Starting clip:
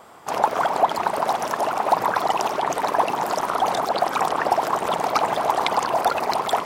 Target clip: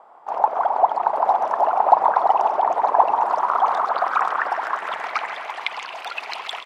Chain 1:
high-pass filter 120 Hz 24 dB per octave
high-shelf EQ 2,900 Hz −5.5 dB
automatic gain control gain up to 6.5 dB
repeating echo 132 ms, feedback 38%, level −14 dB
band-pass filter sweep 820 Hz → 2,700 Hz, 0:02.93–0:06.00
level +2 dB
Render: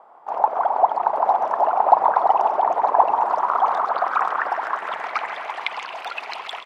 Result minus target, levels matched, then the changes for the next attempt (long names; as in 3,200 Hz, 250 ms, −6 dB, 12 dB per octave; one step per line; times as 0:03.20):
8,000 Hz band −4.0 dB
remove: high-shelf EQ 2,900 Hz −5.5 dB